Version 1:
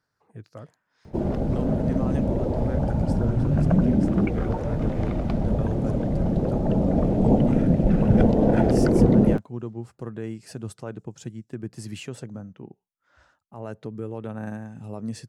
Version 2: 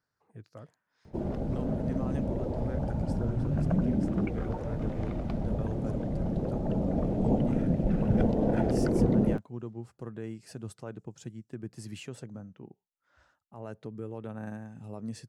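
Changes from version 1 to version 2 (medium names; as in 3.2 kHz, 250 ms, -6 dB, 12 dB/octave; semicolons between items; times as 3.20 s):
speech -6.0 dB; background -7.5 dB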